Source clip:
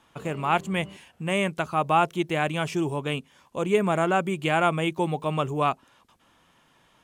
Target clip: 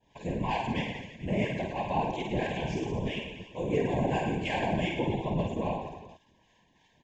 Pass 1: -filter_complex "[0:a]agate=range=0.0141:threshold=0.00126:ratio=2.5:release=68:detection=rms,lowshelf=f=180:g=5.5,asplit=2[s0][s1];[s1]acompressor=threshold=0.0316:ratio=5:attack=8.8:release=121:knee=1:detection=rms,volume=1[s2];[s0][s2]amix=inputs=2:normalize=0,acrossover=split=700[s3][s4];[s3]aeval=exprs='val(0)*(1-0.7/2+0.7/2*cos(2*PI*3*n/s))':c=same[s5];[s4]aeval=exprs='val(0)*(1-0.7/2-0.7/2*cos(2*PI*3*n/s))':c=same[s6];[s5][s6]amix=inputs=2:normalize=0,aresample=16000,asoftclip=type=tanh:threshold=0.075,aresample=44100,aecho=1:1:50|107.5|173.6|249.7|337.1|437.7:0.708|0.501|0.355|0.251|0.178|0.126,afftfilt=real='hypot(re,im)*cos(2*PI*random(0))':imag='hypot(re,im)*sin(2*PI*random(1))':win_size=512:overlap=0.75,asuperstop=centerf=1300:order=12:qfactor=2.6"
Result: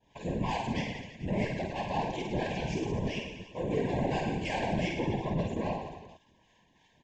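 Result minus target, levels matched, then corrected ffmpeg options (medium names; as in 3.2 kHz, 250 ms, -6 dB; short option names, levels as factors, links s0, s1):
saturation: distortion +12 dB; compression: peak gain reduction -7 dB
-filter_complex "[0:a]agate=range=0.0141:threshold=0.00126:ratio=2.5:release=68:detection=rms,lowshelf=f=180:g=5.5,asplit=2[s0][s1];[s1]acompressor=threshold=0.0119:ratio=5:attack=8.8:release=121:knee=1:detection=rms,volume=1[s2];[s0][s2]amix=inputs=2:normalize=0,acrossover=split=700[s3][s4];[s3]aeval=exprs='val(0)*(1-0.7/2+0.7/2*cos(2*PI*3*n/s))':c=same[s5];[s4]aeval=exprs='val(0)*(1-0.7/2-0.7/2*cos(2*PI*3*n/s))':c=same[s6];[s5][s6]amix=inputs=2:normalize=0,aresample=16000,asoftclip=type=tanh:threshold=0.211,aresample=44100,aecho=1:1:50|107.5|173.6|249.7|337.1|437.7:0.708|0.501|0.355|0.251|0.178|0.126,afftfilt=real='hypot(re,im)*cos(2*PI*random(0))':imag='hypot(re,im)*sin(2*PI*random(1))':win_size=512:overlap=0.75,asuperstop=centerf=1300:order=12:qfactor=2.6"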